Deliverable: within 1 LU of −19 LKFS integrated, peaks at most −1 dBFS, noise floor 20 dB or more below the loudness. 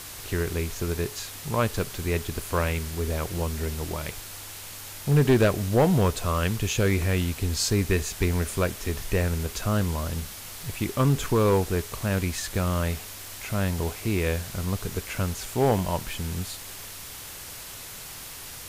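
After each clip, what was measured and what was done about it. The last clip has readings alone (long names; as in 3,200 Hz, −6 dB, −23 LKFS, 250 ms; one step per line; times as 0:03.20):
share of clipped samples 0.3%; peaks flattened at −13.5 dBFS; background noise floor −40 dBFS; target noise floor −47 dBFS; integrated loudness −26.5 LKFS; sample peak −13.5 dBFS; target loudness −19.0 LKFS
→ clipped peaks rebuilt −13.5 dBFS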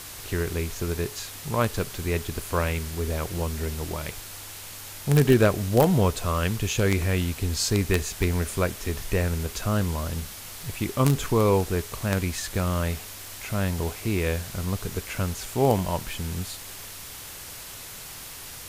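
share of clipped samples 0.0%; background noise floor −40 dBFS; target noise floor −47 dBFS
→ broadband denoise 7 dB, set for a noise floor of −40 dBFS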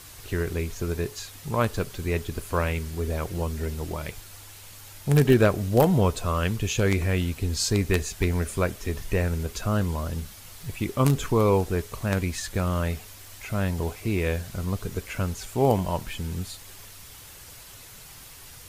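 background noise floor −46 dBFS; target noise floor −47 dBFS
→ broadband denoise 6 dB, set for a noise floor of −46 dBFS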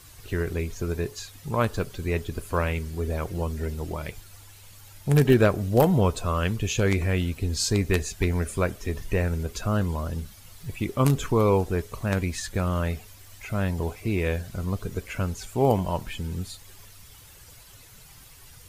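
background noise floor −49 dBFS; integrated loudness −26.5 LKFS; sample peak −5.0 dBFS; target loudness −19.0 LKFS
→ level +7.5 dB
brickwall limiter −1 dBFS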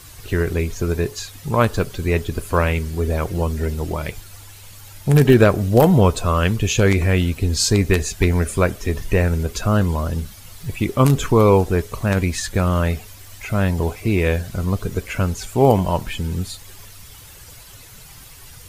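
integrated loudness −19.5 LKFS; sample peak −1.0 dBFS; background noise floor −42 dBFS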